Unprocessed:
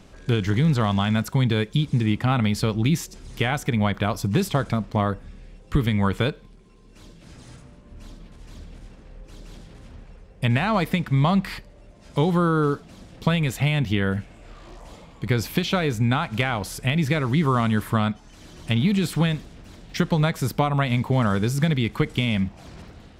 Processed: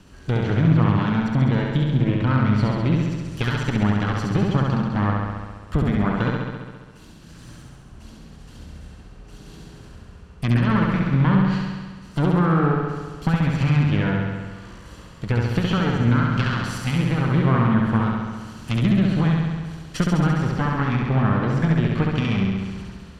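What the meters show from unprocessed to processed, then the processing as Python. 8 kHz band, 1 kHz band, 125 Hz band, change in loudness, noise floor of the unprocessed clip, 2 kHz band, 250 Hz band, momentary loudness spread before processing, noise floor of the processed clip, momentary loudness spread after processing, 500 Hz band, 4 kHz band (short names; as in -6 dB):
n/a, +0.5 dB, +3.0 dB, +2.0 dB, -48 dBFS, 0.0 dB, +3.0 dB, 6 LU, -44 dBFS, 11 LU, -1.0 dB, -4.0 dB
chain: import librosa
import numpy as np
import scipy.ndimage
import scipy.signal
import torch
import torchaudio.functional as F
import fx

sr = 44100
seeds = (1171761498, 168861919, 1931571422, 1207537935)

y = fx.lower_of_two(x, sr, delay_ms=0.68)
y = fx.env_lowpass_down(y, sr, base_hz=2000.0, full_db=-18.5)
y = fx.room_flutter(y, sr, wall_m=11.6, rt60_s=1.5)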